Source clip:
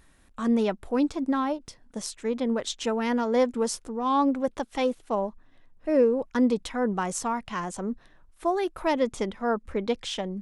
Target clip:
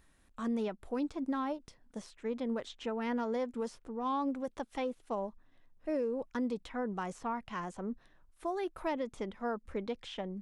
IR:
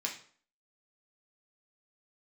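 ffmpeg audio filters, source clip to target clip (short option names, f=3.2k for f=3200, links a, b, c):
-filter_complex "[0:a]acrossover=split=3300[a][b];[a]alimiter=limit=-19dB:level=0:latency=1:release=202[c];[b]acompressor=threshold=-51dB:ratio=6[d];[c][d]amix=inputs=2:normalize=0,volume=-7.5dB"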